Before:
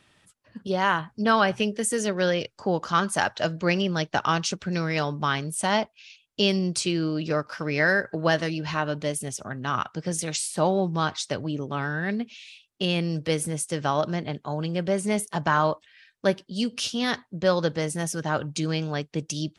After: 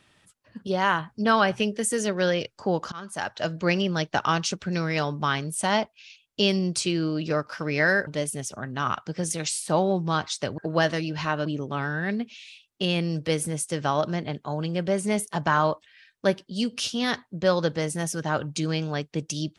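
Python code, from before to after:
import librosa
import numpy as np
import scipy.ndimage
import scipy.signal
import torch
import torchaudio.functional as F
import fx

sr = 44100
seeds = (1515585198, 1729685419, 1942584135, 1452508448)

y = fx.edit(x, sr, fx.fade_in_from(start_s=2.92, length_s=0.69, floor_db=-22.5),
    fx.move(start_s=8.07, length_s=0.88, to_s=11.46), tone=tone)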